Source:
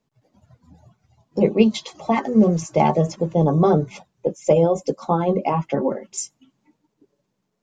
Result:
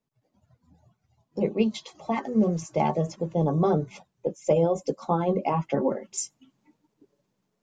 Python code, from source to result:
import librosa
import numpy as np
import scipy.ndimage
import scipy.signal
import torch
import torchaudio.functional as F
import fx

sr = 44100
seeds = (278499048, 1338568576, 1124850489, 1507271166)

y = fx.rider(x, sr, range_db=5, speed_s=2.0)
y = F.gain(torch.from_numpy(y), -6.5).numpy()